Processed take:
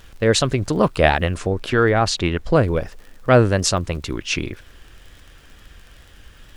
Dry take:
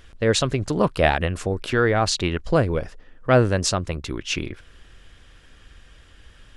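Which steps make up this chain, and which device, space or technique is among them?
vinyl LP (tape wow and flutter; surface crackle 34 per second −38 dBFS; pink noise bed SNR 38 dB)
0:01.38–0:02.63: high-shelf EQ 5,400 Hz −5.5 dB
level +3 dB

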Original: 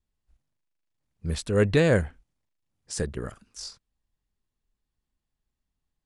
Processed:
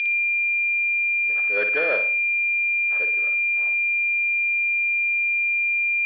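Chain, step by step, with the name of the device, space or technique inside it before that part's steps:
dynamic equaliser 470 Hz, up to +7 dB, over −34 dBFS, Q 0.9
notch filter 4,600 Hz, Q 17
toy sound module (linearly interpolated sample-rate reduction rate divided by 8×; switching amplifier with a slow clock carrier 2,400 Hz; loudspeaker in its box 530–4,600 Hz, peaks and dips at 600 Hz +4 dB, 1,700 Hz +8 dB, 3,200 Hz +10 dB)
tilt shelving filter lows −9.5 dB, about 850 Hz
flutter between parallel walls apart 9.8 metres, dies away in 0.42 s
level −3.5 dB

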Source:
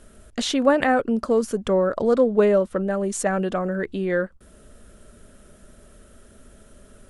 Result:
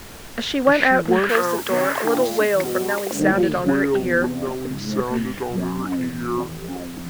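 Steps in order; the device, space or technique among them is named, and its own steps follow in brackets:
delay with pitch and tempo change per echo 104 ms, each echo −7 semitones, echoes 3
horn gramophone (band-pass filter 240–4,200 Hz; parametric band 1,700 Hz +7.5 dB 0.56 octaves; tape wow and flutter; pink noise bed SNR 19 dB)
0:01.29–0:03.20: spectral tilt +3 dB per octave
level +1.5 dB

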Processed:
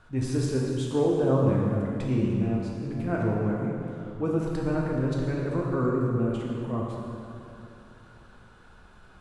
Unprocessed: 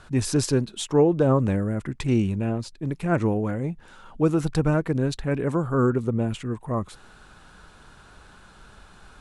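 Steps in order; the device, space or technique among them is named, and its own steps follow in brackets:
swimming-pool hall (convolution reverb RT60 2.8 s, pre-delay 4 ms, DRR −3 dB; high-shelf EQ 3,400 Hz −8 dB)
level −8 dB

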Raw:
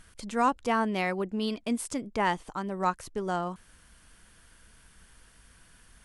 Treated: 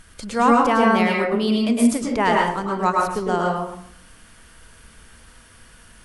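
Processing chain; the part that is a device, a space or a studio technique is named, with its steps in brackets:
bathroom (convolution reverb RT60 0.65 s, pre-delay 100 ms, DRR −1.5 dB)
level +6.5 dB

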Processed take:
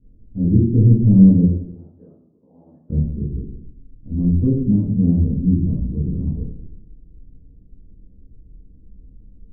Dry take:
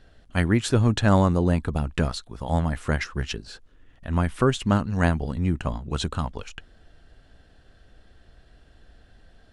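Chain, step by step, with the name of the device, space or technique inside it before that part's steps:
0:01.42–0:02.90: high-pass filter 970 Hz 12 dB per octave
next room (low-pass filter 310 Hz 24 dB per octave; convolution reverb RT60 0.70 s, pre-delay 13 ms, DRR −11 dB)
level −4 dB

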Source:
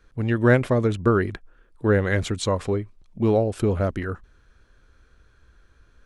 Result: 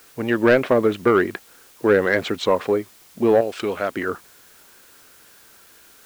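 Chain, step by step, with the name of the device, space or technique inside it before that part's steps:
0:03.41–0:03.92: tilt shelving filter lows −8.5 dB, about 1,400 Hz
tape answering machine (band-pass filter 300–3,300 Hz; soft clipping −14 dBFS, distortion −14 dB; tape wow and flutter; white noise bed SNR 29 dB)
level +7.5 dB

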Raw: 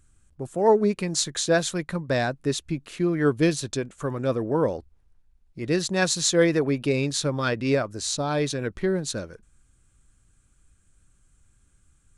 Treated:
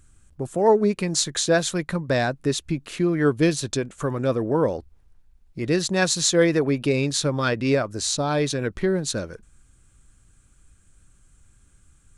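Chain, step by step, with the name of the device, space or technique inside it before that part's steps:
parallel compression (in parallel at −1.5 dB: downward compressor, threshold −31 dBFS, peak gain reduction 16.5 dB)

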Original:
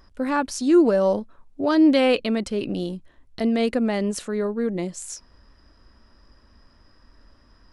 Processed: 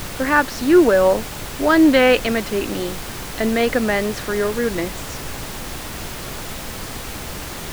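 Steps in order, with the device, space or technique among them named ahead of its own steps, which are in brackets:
horn gramophone (band-pass filter 270–4,100 Hz; parametric band 1,700 Hz +9 dB; tape wow and flutter; pink noise bed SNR 10 dB)
level +5 dB

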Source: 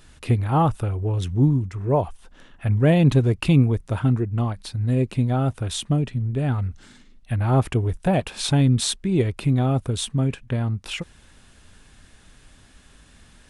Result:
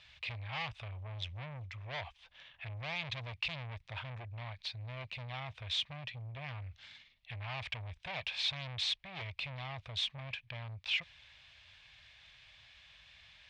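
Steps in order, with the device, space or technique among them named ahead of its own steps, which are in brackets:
scooped metal amplifier (tube saturation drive 28 dB, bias 0.3; loudspeaker in its box 100–4,300 Hz, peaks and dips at 200 Hz −8 dB, 420 Hz −5 dB, 620 Hz +4 dB, 1,400 Hz −7 dB, 2,300 Hz +7 dB, 3,400 Hz +3 dB; guitar amp tone stack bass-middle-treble 10-0-10)
level +1.5 dB

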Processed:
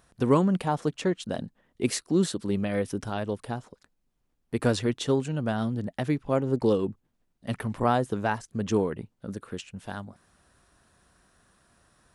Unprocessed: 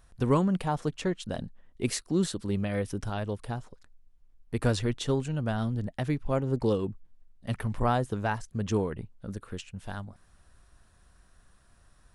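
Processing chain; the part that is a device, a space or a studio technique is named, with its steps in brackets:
filter by subtraction (in parallel: low-pass filter 260 Hz 12 dB per octave + polarity inversion)
on the sum: level +2 dB

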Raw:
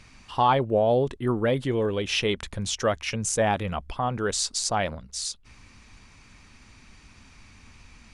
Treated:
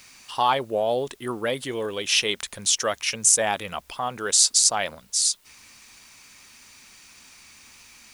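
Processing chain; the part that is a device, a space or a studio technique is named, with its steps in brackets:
turntable without a phono preamp (RIAA equalisation recording; white noise bed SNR 34 dB)

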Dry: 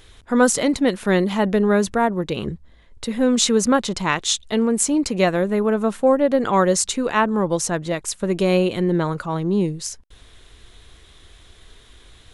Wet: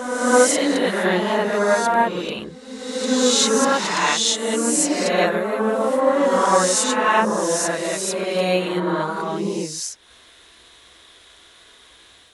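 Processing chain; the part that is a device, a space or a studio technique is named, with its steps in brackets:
ghost voice (reversed playback; convolution reverb RT60 1.6 s, pre-delay 13 ms, DRR −5 dB; reversed playback; high-pass filter 560 Hz 6 dB per octave)
level −2 dB

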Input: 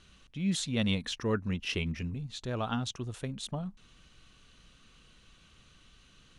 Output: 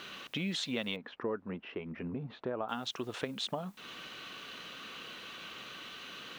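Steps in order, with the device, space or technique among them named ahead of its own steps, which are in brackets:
baby monitor (band-pass filter 350–3,700 Hz; downward compressor 6 to 1, threshold −52 dBFS, peak gain reduction 22 dB; white noise bed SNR 28 dB)
0:00.96–0:02.69: low-pass filter 1,200 Hz 12 dB per octave
level +18 dB

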